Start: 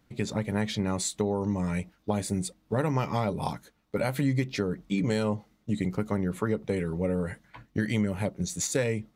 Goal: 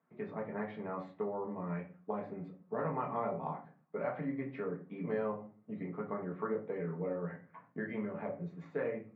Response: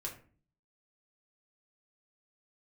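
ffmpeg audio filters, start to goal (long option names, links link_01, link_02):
-filter_complex "[0:a]highpass=frequency=180:width=0.5412,highpass=frequency=180:width=1.3066,equalizer=frequency=320:width_type=q:width=4:gain=-3,equalizer=frequency=710:width_type=q:width=4:gain=6,equalizer=frequency=1100:width_type=q:width=4:gain=7,lowpass=frequency=2000:width=0.5412,lowpass=frequency=2000:width=1.3066[link_01];[1:a]atrim=start_sample=2205,asetrate=48510,aresample=44100[link_02];[link_01][link_02]afir=irnorm=-1:irlink=0,volume=-7dB"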